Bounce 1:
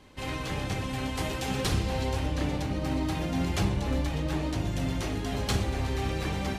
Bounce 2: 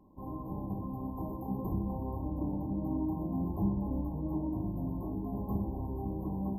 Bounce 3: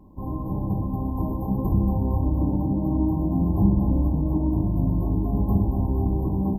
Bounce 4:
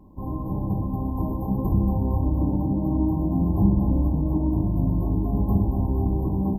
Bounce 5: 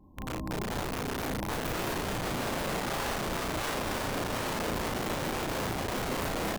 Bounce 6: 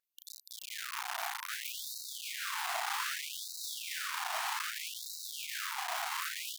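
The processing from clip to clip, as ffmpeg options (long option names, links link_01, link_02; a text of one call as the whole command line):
ffmpeg -i in.wav -af "afftfilt=real='re*(1-between(b*sr/4096,1100,12000))':imag='im*(1-between(b*sr/4096,1100,12000))':win_size=4096:overlap=0.75,equalizer=frequency=200:width_type=o:width=0.33:gain=10,equalizer=frequency=315:width_type=o:width=0.33:gain=7,equalizer=frequency=500:width_type=o:width=0.33:gain=-5,equalizer=frequency=1250:width_type=o:width=0.33:gain=6,areverse,acompressor=mode=upward:threshold=-45dB:ratio=2.5,areverse,volume=-8dB" out.wav
ffmpeg -i in.wav -af "lowshelf=frequency=160:gain=9.5,acontrast=72,aecho=1:1:230|460|690|920|1150|1380|1610:0.376|0.222|0.131|0.0772|0.0455|0.0269|0.0159" out.wav
ffmpeg -i in.wav -af anull out.wav
ffmpeg -i in.wav -filter_complex "[0:a]aeval=exprs='(mod(11.9*val(0)+1,2)-1)/11.9':channel_layout=same,asplit=2[link_01][link_02];[link_02]adelay=35,volume=-2.5dB[link_03];[link_01][link_03]amix=inputs=2:normalize=0,volume=-8dB" out.wav
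ffmpeg -i in.wav -af "afftfilt=real='re*gte(b*sr/1024,640*pow(3800/640,0.5+0.5*sin(2*PI*0.63*pts/sr)))':imag='im*gte(b*sr/1024,640*pow(3800/640,0.5+0.5*sin(2*PI*0.63*pts/sr)))':win_size=1024:overlap=0.75" out.wav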